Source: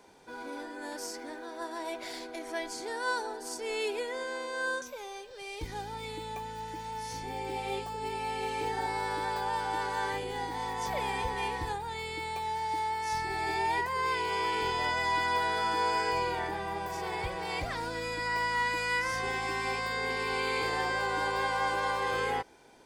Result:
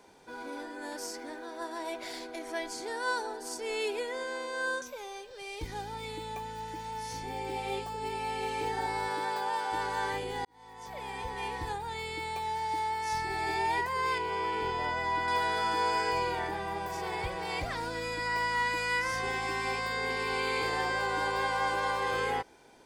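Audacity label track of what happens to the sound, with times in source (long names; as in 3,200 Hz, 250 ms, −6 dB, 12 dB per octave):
9.080000	9.710000	high-pass filter 140 Hz → 340 Hz
10.450000	11.870000	fade in
14.180000	15.280000	high-shelf EQ 2,600 Hz −10 dB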